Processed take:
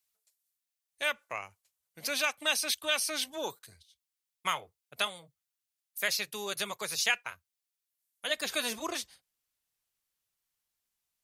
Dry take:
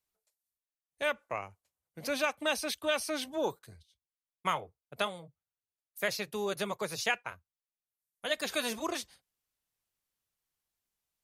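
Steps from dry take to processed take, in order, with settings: tilt shelf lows -7.5 dB, about 1300 Hz, from 8.26 s lows -3 dB

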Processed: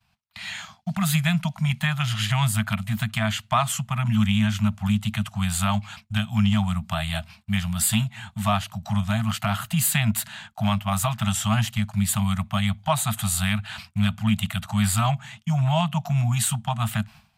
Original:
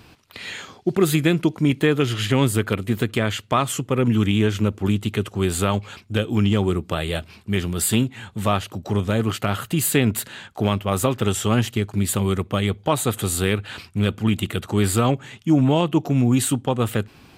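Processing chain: expander -37 dBFS; Chebyshev band-stop 220–640 Hz, order 5

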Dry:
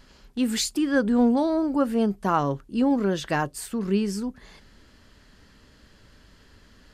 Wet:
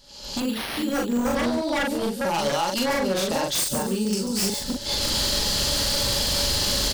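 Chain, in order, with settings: reverse delay 0.225 s, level -1 dB; recorder AGC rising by 58 dB/s; 2.34–2.99 weighting filter D; 3.64–4.13 de-esser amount 95%; resonant high shelf 2800 Hz +12 dB, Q 1.5; small resonant body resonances 570/840 Hz, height 17 dB, ringing for 95 ms; wavefolder -12.5 dBFS; doubler 42 ms -2.5 dB; thin delay 0.141 s, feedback 36%, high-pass 5500 Hz, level -5.5 dB; 0.4–1.35 careless resampling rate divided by 6×, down filtered, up hold; gain -7.5 dB

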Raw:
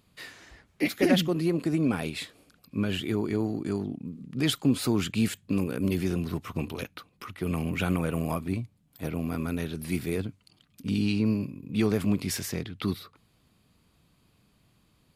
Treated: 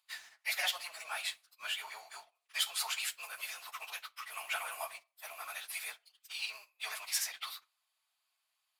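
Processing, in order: steep high-pass 690 Hz 48 dB/oct; reverb RT60 0.80 s, pre-delay 5 ms, DRR 9 dB; sample leveller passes 2; tilt +2 dB/oct; plain phase-vocoder stretch 0.58×; high shelf 11000 Hz -4.5 dB; gain -7 dB

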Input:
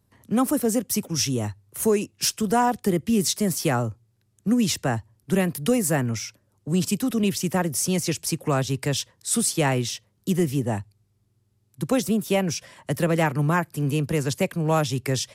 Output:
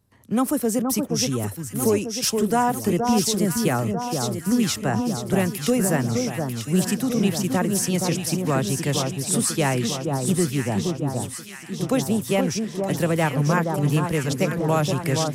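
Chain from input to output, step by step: echo with dull and thin repeats by turns 0.472 s, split 1300 Hz, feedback 75%, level -4 dB

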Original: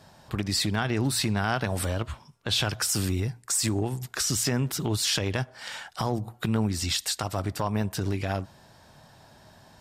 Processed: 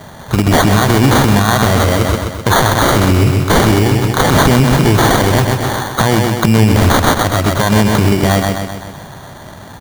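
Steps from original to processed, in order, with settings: sample-and-hold 17×; feedback echo 0.128 s, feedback 56%, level -6 dB; maximiser +20 dB; gain -1 dB

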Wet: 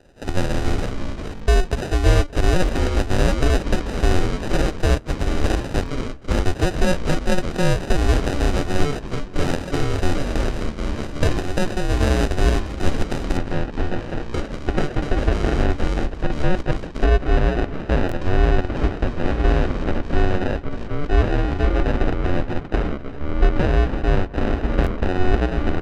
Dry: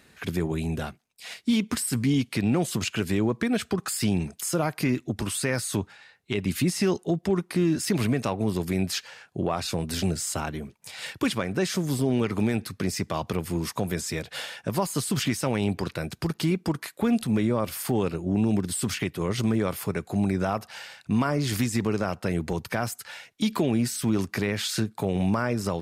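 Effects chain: ring modulator 180 Hz; low shelf 98 Hz +11.5 dB; sample-and-hold 40×; LPF 8400 Hz 12 dB/oct, from 13.37 s 2700 Hz; outdoor echo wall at 98 m, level -21 dB; echoes that change speed 0.195 s, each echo -4 st, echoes 2, each echo -6 dB; stuck buffer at 1.35/2.64/5.84/7.54/18.07/24.82, samples 1024, times 1; gain +5 dB

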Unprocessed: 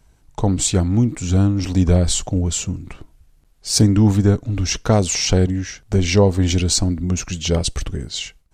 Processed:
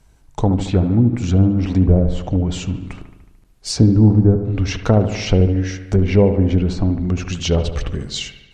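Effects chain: treble ducked by the level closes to 670 Hz, closed at -11 dBFS; dark delay 74 ms, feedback 61%, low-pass 2400 Hz, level -9.5 dB; gain +1.5 dB

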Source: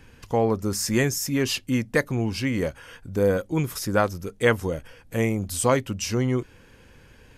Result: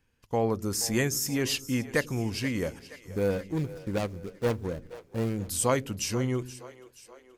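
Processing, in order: 2.79–5.42 median filter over 41 samples; high shelf 3900 Hz +4.5 dB; gate -39 dBFS, range -17 dB; split-band echo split 360 Hz, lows 95 ms, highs 0.477 s, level -16 dB; gain -5 dB

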